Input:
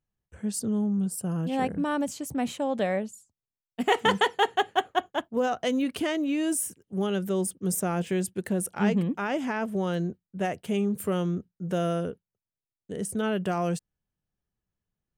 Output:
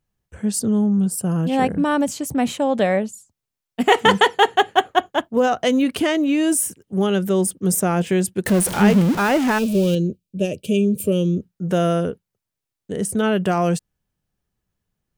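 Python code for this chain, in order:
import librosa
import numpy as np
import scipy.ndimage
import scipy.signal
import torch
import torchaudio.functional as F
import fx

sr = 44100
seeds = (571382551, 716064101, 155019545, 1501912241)

y = fx.zero_step(x, sr, step_db=-30.0, at=(8.46, 9.95))
y = fx.spec_box(y, sr, start_s=9.58, length_s=1.84, low_hz=630.0, high_hz=2300.0, gain_db=-20)
y = y * 10.0 ** (8.5 / 20.0)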